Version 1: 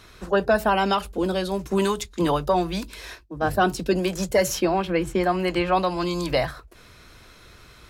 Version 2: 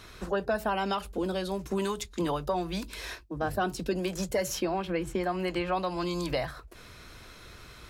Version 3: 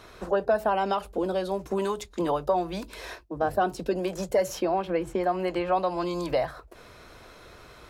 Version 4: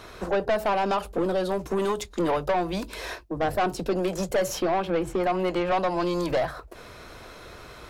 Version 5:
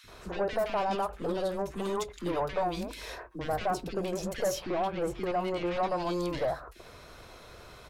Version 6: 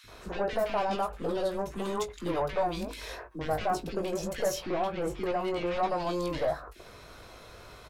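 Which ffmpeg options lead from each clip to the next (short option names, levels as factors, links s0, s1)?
-af "acompressor=threshold=0.0224:ratio=2"
-af "equalizer=f=630:w=0.65:g=10,volume=0.668"
-af "aeval=exprs='(tanh(17.8*val(0)+0.25)-tanh(0.25))/17.8':c=same,volume=1.88"
-filter_complex "[0:a]acrossover=split=300|1700[s0][s1][s2];[s0]adelay=40[s3];[s1]adelay=80[s4];[s3][s4][s2]amix=inputs=3:normalize=0,volume=0.596"
-filter_complex "[0:a]asplit=2[s0][s1];[s1]adelay=19,volume=0.398[s2];[s0][s2]amix=inputs=2:normalize=0"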